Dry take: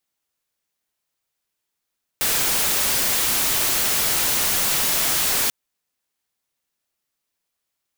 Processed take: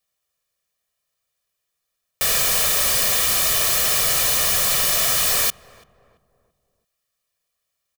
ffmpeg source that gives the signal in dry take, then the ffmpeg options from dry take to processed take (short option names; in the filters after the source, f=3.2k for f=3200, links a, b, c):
-f lavfi -i "anoisesrc=c=white:a=0.163:d=3.29:r=44100:seed=1"
-filter_complex "[0:a]aecho=1:1:1.7:0.65,asplit=2[a][b];[b]adelay=336,lowpass=f=1k:p=1,volume=-18.5dB,asplit=2[c][d];[d]adelay=336,lowpass=f=1k:p=1,volume=0.47,asplit=2[e][f];[f]adelay=336,lowpass=f=1k:p=1,volume=0.47,asplit=2[g][h];[h]adelay=336,lowpass=f=1k:p=1,volume=0.47[i];[a][c][e][g][i]amix=inputs=5:normalize=0"